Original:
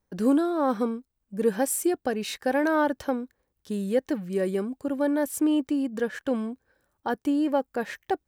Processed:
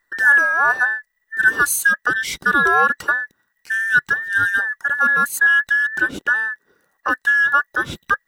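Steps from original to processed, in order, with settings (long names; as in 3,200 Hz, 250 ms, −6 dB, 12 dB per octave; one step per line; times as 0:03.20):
frequency inversion band by band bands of 2,000 Hz
level +8 dB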